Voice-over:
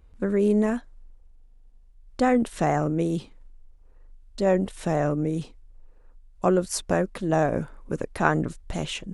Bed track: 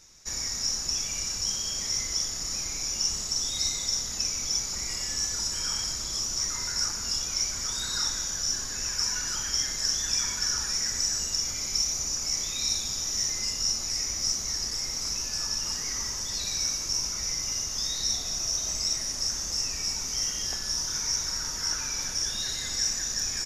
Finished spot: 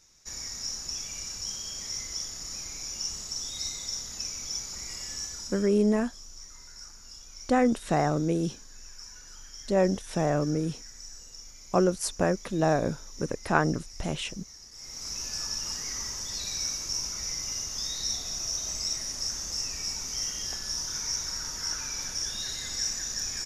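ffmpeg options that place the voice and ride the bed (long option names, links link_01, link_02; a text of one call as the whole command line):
ffmpeg -i stem1.wav -i stem2.wav -filter_complex "[0:a]adelay=5300,volume=-2dB[link_01];[1:a]volume=9dB,afade=type=out:start_time=5.15:duration=0.61:silence=0.251189,afade=type=in:start_time=14.72:duration=0.54:silence=0.177828[link_02];[link_01][link_02]amix=inputs=2:normalize=0" out.wav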